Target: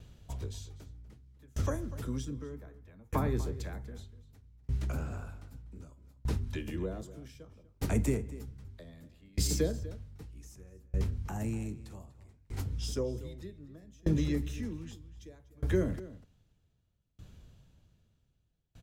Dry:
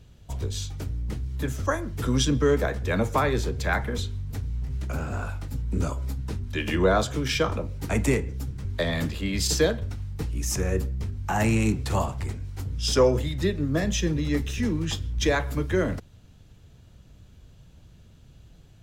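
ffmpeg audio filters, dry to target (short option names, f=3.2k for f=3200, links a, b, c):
-filter_complex "[0:a]asettb=1/sr,asplit=3[a][b][c];[a]atrim=end=2.434[d];[b]atrim=start=2.43:end=3.39,asetpts=PTS-STARTPTS,afade=t=in:d=0.004:c=qsin,afade=t=out:st=0.956:d=0.004:c=qsin,equalizer=f=500:t=o:w=1:g=-4,equalizer=f=1k:t=o:w=1:g=7,equalizer=f=2k:t=o:w=1:g=4,equalizer=f=8k:t=o:w=1:g=-7[e];[c]atrim=start=3.386[f];[d][e]acrossfade=d=0.004:c1=hsin:c2=qsin[g];[g][f]acrossfade=d=0.004:c1=qsin:c2=hsin,acrossover=split=480|6700[h][i][j];[i]acompressor=threshold=-39dB:ratio=6[k];[j]asoftclip=type=tanh:threshold=-30.5dB[l];[h][k][l]amix=inputs=3:normalize=0,asplit=2[m][n];[n]adelay=244.9,volume=-11dB,highshelf=f=4k:g=-5.51[o];[m][o]amix=inputs=2:normalize=0,aeval=exprs='val(0)*pow(10,-32*if(lt(mod(0.64*n/s,1),2*abs(0.64)/1000),1-mod(0.64*n/s,1)/(2*abs(0.64)/1000),(mod(0.64*n/s,1)-2*abs(0.64)/1000)/(1-2*abs(0.64)/1000))/20)':c=same"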